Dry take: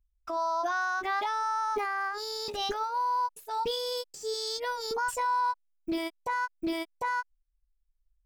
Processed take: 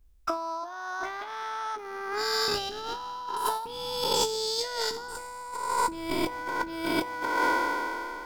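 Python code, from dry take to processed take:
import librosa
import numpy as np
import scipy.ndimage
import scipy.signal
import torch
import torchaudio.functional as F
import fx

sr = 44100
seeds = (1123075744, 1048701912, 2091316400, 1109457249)

y = fx.spec_trails(x, sr, decay_s=2.92)
y = fx.low_shelf(y, sr, hz=65.0, db=11.5, at=(4.62, 6.69))
y = fx.over_compress(y, sr, threshold_db=-34.0, ratio=-0.5)
y = y * librosa.db_to_amplitude(4.5)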